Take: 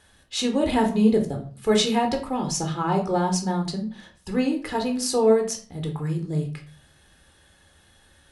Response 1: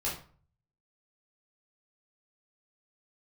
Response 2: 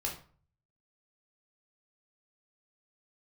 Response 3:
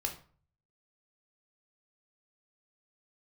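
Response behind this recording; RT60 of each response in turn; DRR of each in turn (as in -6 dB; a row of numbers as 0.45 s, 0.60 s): 3; 0.45 s, 0.45 s, 0.45 s; -7.0 dB, -1.5 dB, 2.5 dB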